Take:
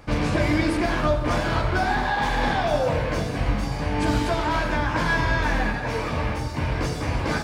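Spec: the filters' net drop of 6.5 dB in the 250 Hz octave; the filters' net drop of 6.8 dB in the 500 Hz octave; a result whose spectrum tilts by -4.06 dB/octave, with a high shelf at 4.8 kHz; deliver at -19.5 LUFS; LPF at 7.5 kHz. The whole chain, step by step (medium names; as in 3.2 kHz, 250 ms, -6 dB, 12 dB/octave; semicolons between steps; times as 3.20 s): low-pass 7.5 kHz; peaking EQ 250 Hz -6.5 dB; peaking EQ 500 Hz -7.5 dB; treble shelf 4.8 kHz -3.5 dB; trim +7 dB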